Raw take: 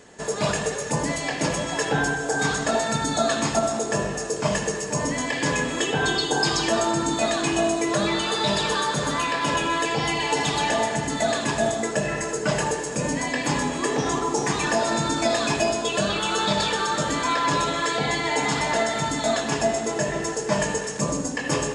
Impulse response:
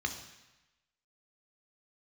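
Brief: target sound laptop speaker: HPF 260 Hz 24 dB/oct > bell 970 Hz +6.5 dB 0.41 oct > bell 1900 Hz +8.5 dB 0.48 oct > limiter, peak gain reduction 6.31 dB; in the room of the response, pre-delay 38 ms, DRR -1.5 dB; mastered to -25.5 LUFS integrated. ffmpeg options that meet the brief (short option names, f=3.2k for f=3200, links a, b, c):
-filter_complex "[0:a]asplit=2[a][b];[1:a]atrim=start_sample=2205,adelay=38[c];[b][c]afir=irnorm=-1:irlink=0,volume=-2.5dB[d];[a][d]amix=inputs=2:normalize=0,highpass=f=260:w=0.5412,highpass=f=260:w=1.3066,equalizer=f=970:t=o:w=0.41:g=6.5,equalizer=f=1.9k:t=o:w=0.48:g=8.5,volume=-6.5dB,alimiter=limit=-16.5dB:level=0:latency=1"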